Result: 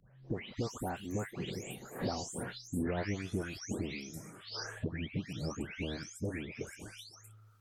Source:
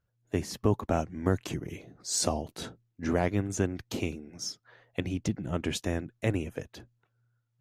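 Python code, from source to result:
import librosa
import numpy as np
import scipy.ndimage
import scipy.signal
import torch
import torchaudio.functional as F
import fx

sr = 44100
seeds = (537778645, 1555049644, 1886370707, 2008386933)

y = fx.spec_delay(x, sr, highs='late', ms=434)
y = fx.doppler_pass(y, sr, speed_mps=35, closest_m=23.0, pass_at_s=2.99)
y = fx.band_squash(y, sr, depth_pct=100)
y = y * librosa.db_to_amplitude(1.5)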